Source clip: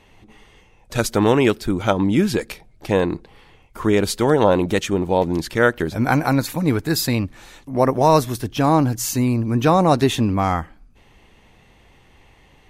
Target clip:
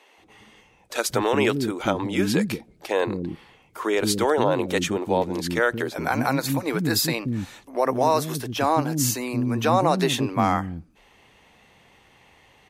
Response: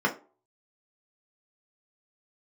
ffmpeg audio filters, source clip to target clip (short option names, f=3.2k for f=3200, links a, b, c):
-filter_complex "[0:a]highpass=f=220:p=1,alimiter=limit=-8.5dB:level=0:latency=1:release=92,acrossover=split=310[a][b];[a]adelay=180[c];[c][b]amix=inputs=2:normalize=0"